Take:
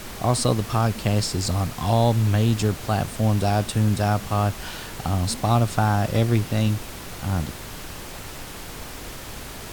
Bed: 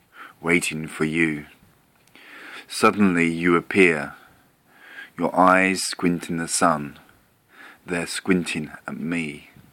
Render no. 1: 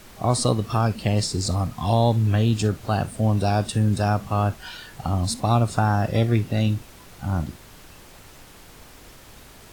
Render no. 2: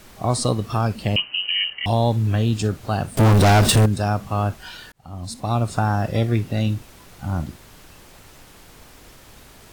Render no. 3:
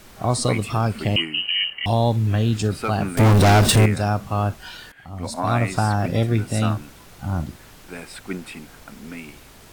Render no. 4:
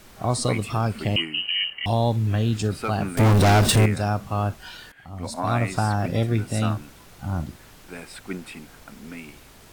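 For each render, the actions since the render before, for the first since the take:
noise print and reduce 10 dB
1.16–1.86 s: frequency inversion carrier 3 kHz; 3.17–3.86 s: waveshaping leveller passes 5; 4.92–5.72 s: fade in
add bed -10.5 dB
trim -2.5 dB

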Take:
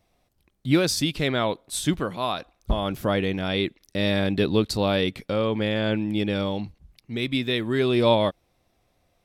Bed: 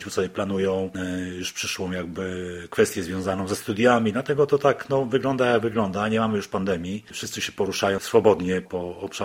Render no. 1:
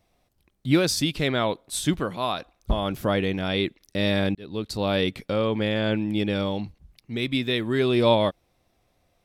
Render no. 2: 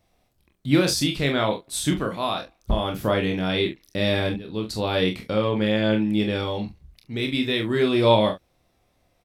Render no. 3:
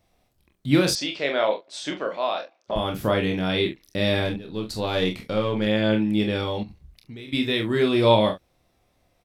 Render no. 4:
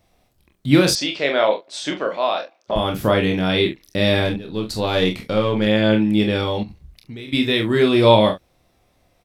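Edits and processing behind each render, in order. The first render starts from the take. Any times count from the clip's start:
4.35–5.00 s: fade in
early reflections 28 ms -6 dB, 43 ms -8.5 dB, 70 ms -14.5 dB
0.95–2.76 s: cabinet simulation 440–5800 Hz, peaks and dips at 580 Hz +7 dB, 1.2 kHz -3 dB, 3.8 kHz -5 dB; 4.25–5.67 s: partial rectifier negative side -3 dB; 6.63–7.33 s: compression 12:1, threshold -35 dBFS
trim +5 dB; peak limiter -1 dBFS, peak gain reduction 1 dB

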